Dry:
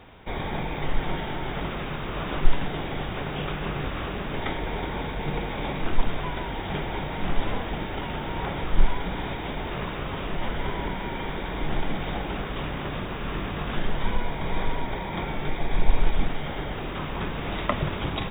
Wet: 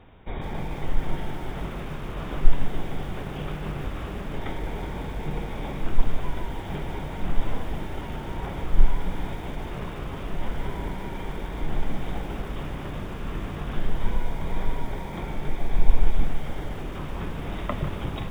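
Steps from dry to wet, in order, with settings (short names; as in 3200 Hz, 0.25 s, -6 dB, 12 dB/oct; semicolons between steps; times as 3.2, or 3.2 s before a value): tilt -1.5 dB/oct; lo-fi delay 0.148 s, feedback 55%, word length 6-bit, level -12 dB; gain -5.5 dB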